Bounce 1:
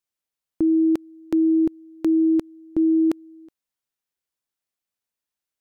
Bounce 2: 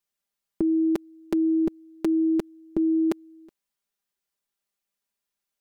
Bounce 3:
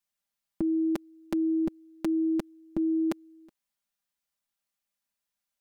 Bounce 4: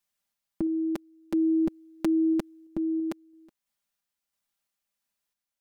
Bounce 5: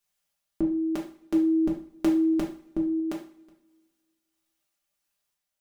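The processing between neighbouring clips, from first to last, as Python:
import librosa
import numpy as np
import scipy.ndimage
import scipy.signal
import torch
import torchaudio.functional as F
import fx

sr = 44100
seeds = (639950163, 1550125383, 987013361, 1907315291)

y1 = x + 0.76 * np.pad(x, (int(5.0 * sr / 1000.0), 0))[:len(x)]
y2 = fx.peak_eq(y1, sr, hz=400.0, db=-12.5, octaves=0.31)
y2 = y2 * librosa.db_to_amplitude(-1.5)
y3 = fx.tremolo_random(y2, sr, seeds[0], hz=3.0, depth_pct=55)
y3 = y3 * librosa.db_to_amplitude(3.5)
y4 = fx.rev_double_slope(y3, sr, seeds[1], early_s=0.43, late_s=1.9, knee_db=-26, drr_db=-1.5)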